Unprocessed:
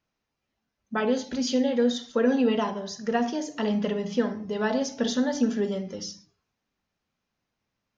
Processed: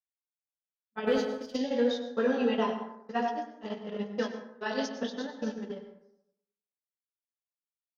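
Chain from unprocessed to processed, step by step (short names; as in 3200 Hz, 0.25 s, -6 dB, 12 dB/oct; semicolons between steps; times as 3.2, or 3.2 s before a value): feedback echo 98 ms, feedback 44%, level -7 dB; chorus 0.94 Hz, delay 18 ms, depth 4.6 ms; gate -27 dBFS, range -45 dB; 4.18–4.89 high shelf 3600 Hz +12 dB; LPF 5400 Hz 24 dB/oct; low shelf 190 Hz -9.5 dB; plate-style reverb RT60 0.79 s, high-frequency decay 0.45×, pre-delay 85 ms, DRR 8.5 dB; 1.07–1.57 sample leveller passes 1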